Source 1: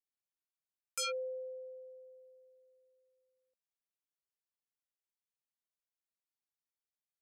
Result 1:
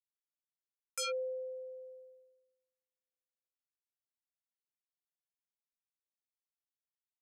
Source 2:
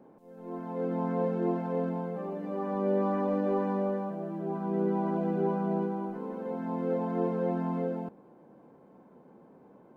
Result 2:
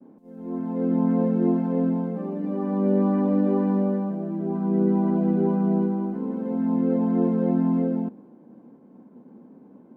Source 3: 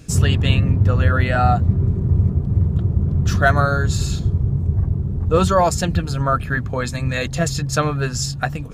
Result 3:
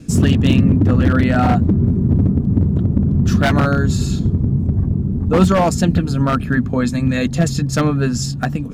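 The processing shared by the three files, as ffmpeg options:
ffmpeg -i in.wav -af "agate=range=-33dB:threshold=-53dB:ratio=3:detection=peak,aeval=exprs='0.316*(abs(mod(val(0)/0.316+3,4)-2)-1)':channel_layout=same,equalizer=frequency=240:width=1.4:gain=15,volume=-1dB" out.wav

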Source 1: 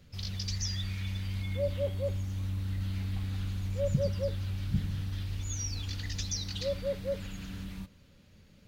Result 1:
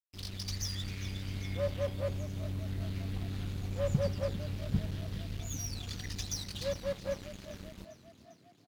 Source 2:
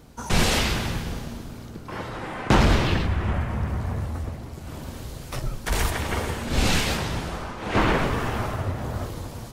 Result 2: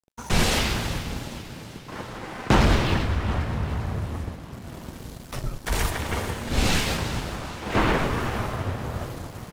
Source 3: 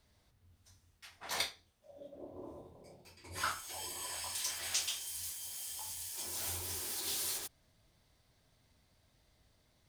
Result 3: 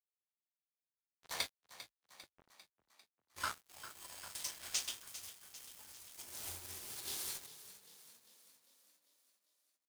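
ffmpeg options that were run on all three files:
ffmpeg -i in.wav -filter_complex "[0:a]aeval=exprs='sgn(val(0))*max(abs(val(0))-0.00944,0)':channel_layout=same,asplit=7[link_01][link_02][link_03][link_04][link_05][link_06][link_07];[link_02]adelay=398,afreqshift=36,volume=-14dB[link_08];[link_03]adelay=796,afreqshift=72,volume=-18.7dB[link_09];[link_04]adelay=1194,afreqshift=108,volume=-23.5dB[link_10];[link_05]adelay=1592,afreqshift=144,volume=-28.2dB[link_11];[link_06]adelay=1990,afreqshift=180,volume=-32.9dB[link_12];[link_07]adelay=2388,afreqshift=216,volume=-37.7dB[link_13];[link_01][link_08][link_09][link_10][link_11][link_12][link_13]amix=inputs=7:normalize=0" out.wav

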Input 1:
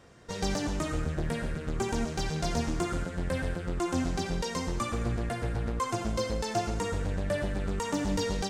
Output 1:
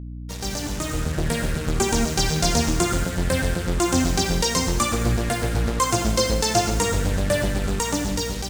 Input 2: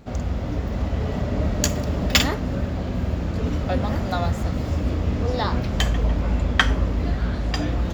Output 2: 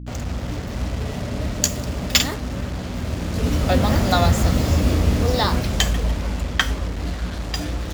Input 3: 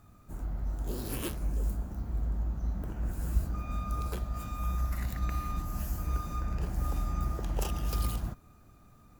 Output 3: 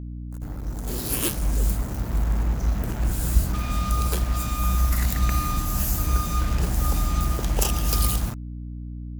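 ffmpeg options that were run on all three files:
ffmpeg -i in.wav -af "highshelf=frequency=3900:gain=7.5,dynaudnorm=framelen=410:gausssize=5:maxgain=12dB,equalizer=frequency=6900:width_type=o:width=2.1:gain=2.5,acrusher=bits=4:mix=0:aa=0.5,aeval=exprs='val(0)+0.0316*(sin(2*PI*60*n/s)+sin(2*PI*2*60*n/s)/2+sin(2*PI*3*60*n/s)/3+sin(2*PI*4*60*n/s)/4+sin(2*PI*5*60*n/s)/5)':channel_layout=same,volume=-2.5dB" out.wav

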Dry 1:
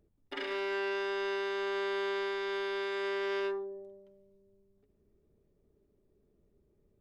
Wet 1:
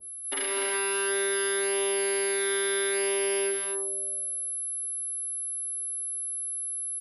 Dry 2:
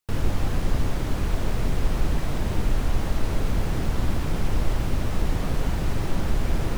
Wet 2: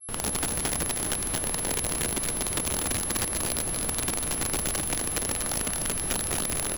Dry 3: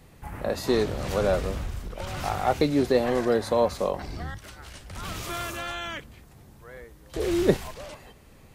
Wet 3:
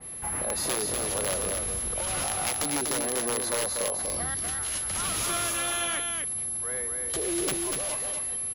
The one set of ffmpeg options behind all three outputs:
ffmpeg -i in.wav -filter_complex "[0:a]aeval=exprs='(mod(5.62*val(0)+1,2)-1)/5.62':channel_layout=same,acontrast=57,alimiter=limit=-22dB:level=0:latency=1:release=466,acrossover=split=480[link_01][link_02];[link_02]acompressor=threshold=-29dB:ratio=6[link_03];[link_01][link_03]amix=inputs=2:normalize=0,lowshelf=frequency=180:gain=-10,aeval=exprs='val(0)+0.0141*sin(2*PI*11000*n/s)':channel_layout=same,asplit=2[link_04][link_05];[link_05]aecho=0:1:243:0.596[link_06];[link_04][link_06]amix=inputs=2:normalize=0,adynamicequalizer=threshold=0.00398:dfrequency=2900:dqfactor=0.7:tfrequency=2900:tqfactor=0.7:attack=5:release=100:ratio=0.375:range=2:mode=boostabove:tftype=highshelf" out.wav

